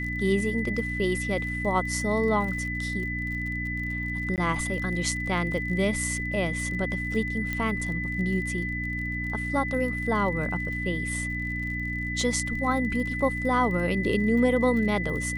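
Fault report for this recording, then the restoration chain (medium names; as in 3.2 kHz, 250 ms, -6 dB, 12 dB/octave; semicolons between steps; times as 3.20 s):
crackle 40 per s -35 dBFS
hum 60 Hz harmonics 5 -33 dBFS
whine 2 kHz -31 dBFS
4.36–4.38 s: dropout 18 ms
7.53 s: pop -16 dBFS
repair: de-click; de-hum 60 Hz, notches 5; band-stop 2 kHz, Q 30; interpolate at 4.36 s, 18 ms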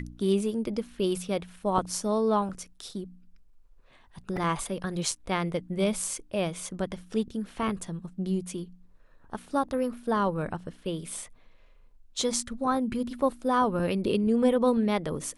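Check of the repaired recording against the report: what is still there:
nothing left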